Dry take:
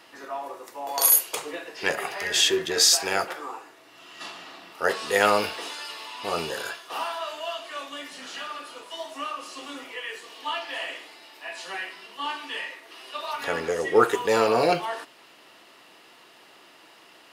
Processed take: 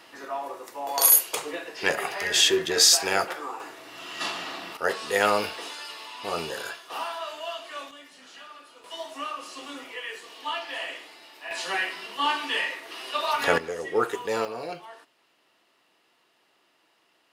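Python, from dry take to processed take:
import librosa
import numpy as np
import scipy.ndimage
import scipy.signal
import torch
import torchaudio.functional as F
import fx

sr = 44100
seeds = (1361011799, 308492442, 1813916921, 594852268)

y = fx.gain(x, sr, db=fx.steps((0.0, 1.0), (3.6, 8.0), (4.77, -2.0), (7.91, -10.0), (8.84, -1.0), (11.51, 6.0), (13.58, -6.0), (14.45, -14.0)))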